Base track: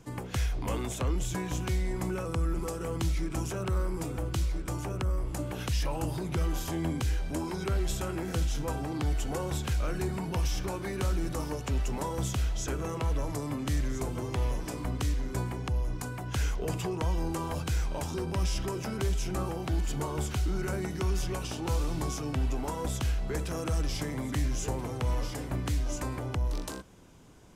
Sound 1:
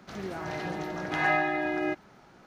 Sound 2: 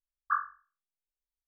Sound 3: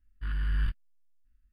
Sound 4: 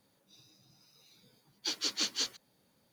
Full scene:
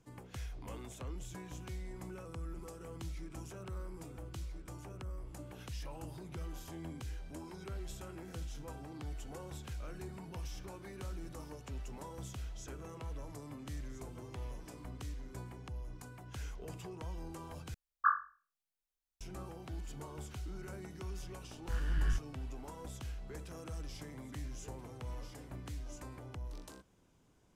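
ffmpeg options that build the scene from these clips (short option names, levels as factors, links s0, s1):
-filter_complex "[0:a]volume=0.2,asplit=2[s0][s1];[s0]atrim=end=17.744[s2];[2:a]atrim=end=1.47[s3];[s1]atrim=start=19.206[s4];[3:a]atrim=end=1.52,asetpts=PTS-STARTPTS,volume=0.631,afade=t=in:d=0.004:c=hsin,afade=t=out:st=1.516:d=0.004:c=hsin,adelay=21470[s5];[s2][s3]acrossfade=d=0.004:c1=hsin:c2=hsin[s6];[s6][s4]acrossfade=d=0.004:c1=hsin:c2=hsin[s7];[s7][s5]amix=inputs=2:normalize=0"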